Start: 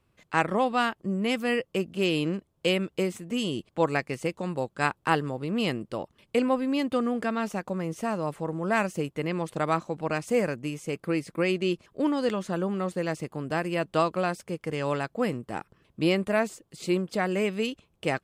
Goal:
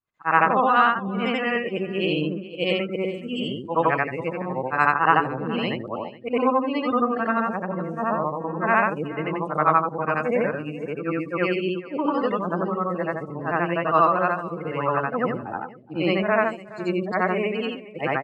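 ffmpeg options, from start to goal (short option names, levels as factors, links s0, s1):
-af "afftfilt=real='re':imag='-im':win_size=8192:overlap=0.75,afftdn=nr=25:nf=-40,equalizer=f=1200:t=o:w=1.2:g=11,aecho=1:1:421:0.126,volume=1.88"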